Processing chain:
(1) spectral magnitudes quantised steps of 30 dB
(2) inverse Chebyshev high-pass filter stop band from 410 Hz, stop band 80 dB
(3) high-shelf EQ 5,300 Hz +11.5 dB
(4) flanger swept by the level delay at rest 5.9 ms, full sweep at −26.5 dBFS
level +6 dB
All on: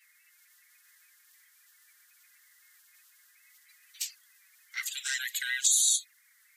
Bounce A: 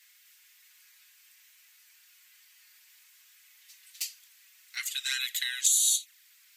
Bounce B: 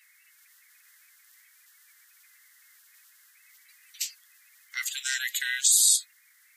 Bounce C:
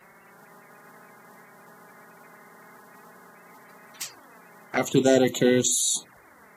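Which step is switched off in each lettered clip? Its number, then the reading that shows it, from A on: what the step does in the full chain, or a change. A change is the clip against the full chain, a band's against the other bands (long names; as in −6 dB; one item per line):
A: 1, 4 kHz band +2.5 dB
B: 4, change in integrated loudness +4.0 LU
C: 2, 1 kHz band +22.0 dB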